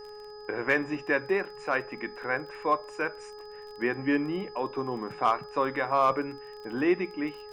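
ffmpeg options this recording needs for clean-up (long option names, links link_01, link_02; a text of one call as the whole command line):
ffmpeg -i in.wav -af "adeclick=threshold=4,bandreject=frequency=420:width_type=h:width=4,bandreject=frequency=840:width_type=h:width=4,bandreject=frequency=1260:width_type=h:width=4,bandreject=frequency=1680:width_type=h:width=4,bandreject=frequency=5000:width=30,agate=range=-21dB:threshold=-36dB" out.wav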